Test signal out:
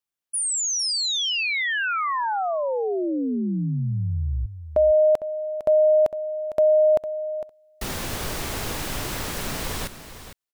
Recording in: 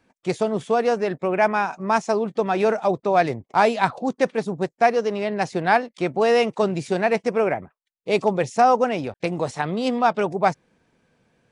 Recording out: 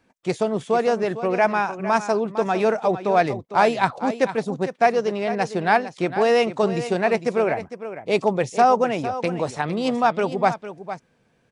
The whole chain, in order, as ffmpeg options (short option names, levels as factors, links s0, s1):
-af "aecho=1:1:455:0.251"